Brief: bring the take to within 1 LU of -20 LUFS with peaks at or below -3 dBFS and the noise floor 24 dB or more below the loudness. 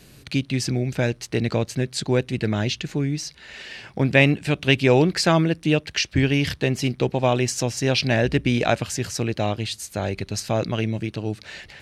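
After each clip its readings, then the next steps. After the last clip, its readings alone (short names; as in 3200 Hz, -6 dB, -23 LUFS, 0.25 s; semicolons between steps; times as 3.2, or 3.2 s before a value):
loudness -22.5 LUFS; peak -2.0 dBFS; loudness target -20.0 LUFS
-> gain +2.5 dB; limiter -3 dBFS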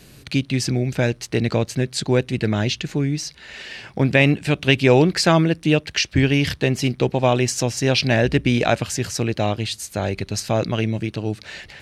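loudness -20.5 LUFS; peak -3.0 dBFS; noise floor -47 dBFS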